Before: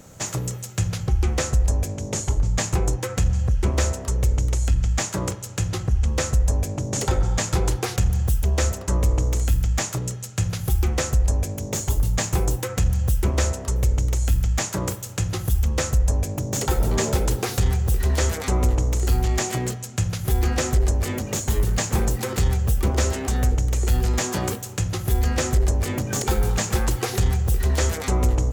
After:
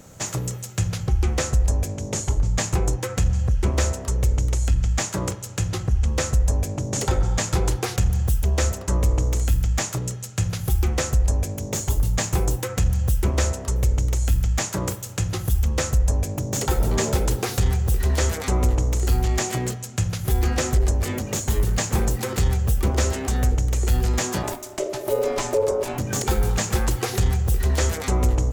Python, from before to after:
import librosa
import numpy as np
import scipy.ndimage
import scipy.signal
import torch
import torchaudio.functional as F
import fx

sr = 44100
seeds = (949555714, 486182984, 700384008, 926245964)

y = fx.ring_mod(x, sr, carrier_hz=490.0, at=(24.42, 25.97), fade=0.02)